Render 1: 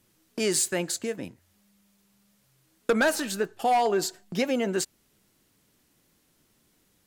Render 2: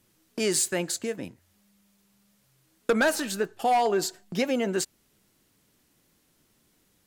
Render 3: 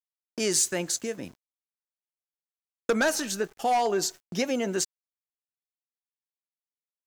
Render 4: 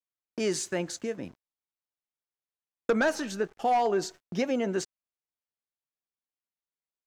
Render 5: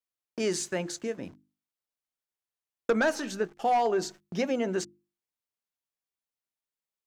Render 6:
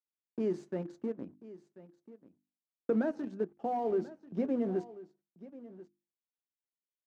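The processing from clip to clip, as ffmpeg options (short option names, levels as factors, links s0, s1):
-af anull
-af "equalizer=f=6000:w=3.1:g=9,aeval=exprs='val(0)*gte(abs(val(0)),0.00355)':c=same,volume=0.841"
-af "aemphasis=mode=reproduction:type=75kf"
-af "bandreject=f=50:t=h:w=6,bandreject=f=100:t=h:w=6,bandreject=f=150:t=h:w=6,bandreject=f=200:t=h:w=6,bandreject=f=250:t=h:w=6,bandreject=f=300:t=h:w=6,bandreject=f=350:t=h:w=6"
-filter_complex "[0:a]asplit=2[s0][s1];[s1]acrusher=bits=4:mix=0:aa=0.000001,volume=0.562[s2];[s0][s2]amix=inputs=2:normalize=0,bandpass=f=260:t=q:w=1.2:csg=0,aecho=1:1:1038:0.133,volume=0.631"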